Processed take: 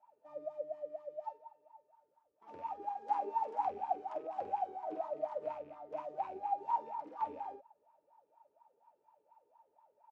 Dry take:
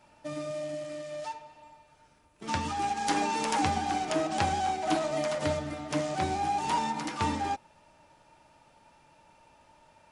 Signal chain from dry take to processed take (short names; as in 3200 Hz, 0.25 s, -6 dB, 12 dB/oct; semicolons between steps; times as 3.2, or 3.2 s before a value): rattling part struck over -36 dBFS, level -24 dBFS; doubler 48 ms -4 dB; wah 4.2 Hz 410–1000 Hz, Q 13; gain +1 dB